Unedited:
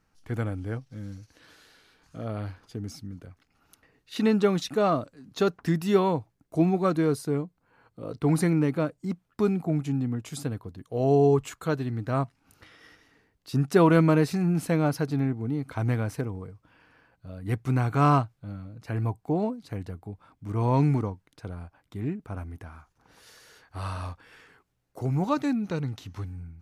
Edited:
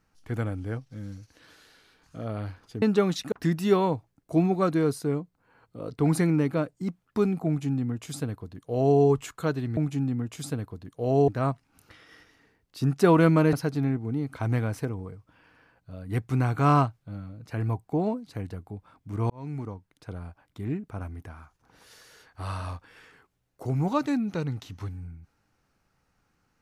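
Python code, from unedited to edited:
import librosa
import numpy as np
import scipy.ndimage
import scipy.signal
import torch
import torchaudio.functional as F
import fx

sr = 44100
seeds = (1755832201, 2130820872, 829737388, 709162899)

y = fx.edit(x, sr, fx.cut(start_s=2.82, length_s=1.46),
    fx.cut(start_s=4.78, length_s=0.77),
    fx.duplicate(start_s=9.7, length_s=1.51, to_s=12.0),
    fx.cut(start_s=14.25, length_s=0.64),
    fx.fade_in_span(start_s=20.66, length_s=0.87), tone=tone)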